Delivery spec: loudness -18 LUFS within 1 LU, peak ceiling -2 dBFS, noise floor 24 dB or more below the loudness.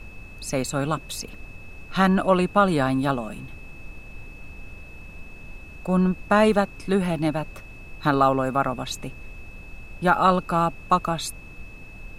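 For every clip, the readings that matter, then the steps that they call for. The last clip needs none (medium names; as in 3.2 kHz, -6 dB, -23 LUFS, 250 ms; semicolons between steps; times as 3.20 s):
steady tone 2.6 kHz; tone level -45 dBFS; noise floor -43 dBFS; noise floor target -47 dBFS; loudness -23.0 LUFS; peak level -5.0 dBFS; loudness target -18.0 LUFS
-> band-stop 2.6 kHz, Q 30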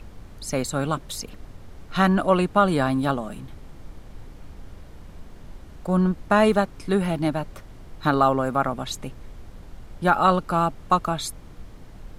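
steady tone not found; noise floor -44 dBFS; noise floor target -47 dBFS
-> noise print and reduce 6 dB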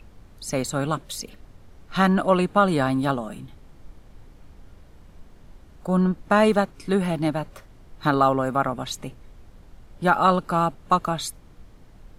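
noise floor -50 dBFS; loudness -23.0 LUFS; peak level -5.0 dBFS; loudness target -18.0 LUFS
-> trim +5 dB; peak limiter -2 dBFS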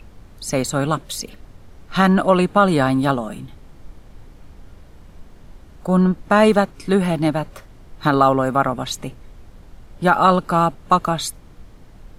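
loudness -18.5 LUFS; peak level -2.0 dBFS; noise floor -45 dBFS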